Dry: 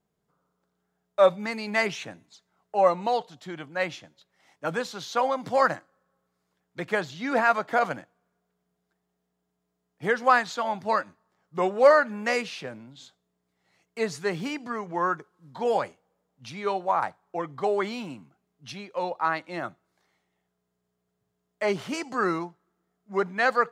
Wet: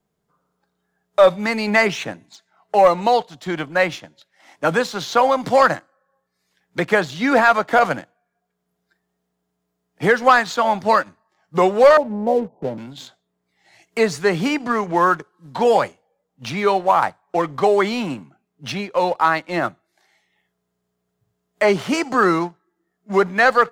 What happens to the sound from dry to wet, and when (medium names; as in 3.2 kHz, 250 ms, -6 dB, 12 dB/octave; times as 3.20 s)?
11.97–12.78 s: steep low-pass 950 Hz 96 dB/octave
whole clip: spectral noise reduction 12 dB; waveshaping leveller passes 1; three bands compressed up and down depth 40%; trim +6 dB